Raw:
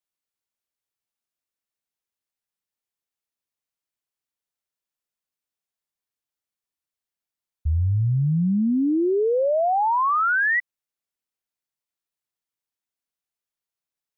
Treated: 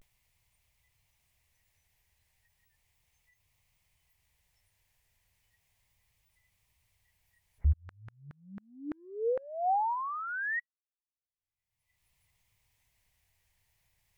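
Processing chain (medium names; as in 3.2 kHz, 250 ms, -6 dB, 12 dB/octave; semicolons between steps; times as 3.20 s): spectral noise reduction 28 dB; FFT filter 100 Hz 0 dB, 270 Hz -27 dB, 950 Hz -18 dB, 1.4 kHz -29 dB, 2 kHz -13 dB, 3.8 kHz -22 dB; upward compressor, threshold -25 dBFS; 7.72–9.95 s: LFO high-pass saw down 6.6 Hz -> 1.1 Hz 340–1600 Hz; vibrato 0.35 Hz 61 cents; trim -1.5 dB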